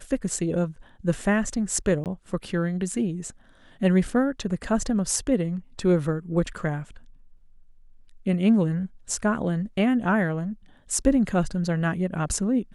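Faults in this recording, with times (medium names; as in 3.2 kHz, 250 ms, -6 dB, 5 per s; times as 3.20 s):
2.04–2.06 s: dropout 18 ms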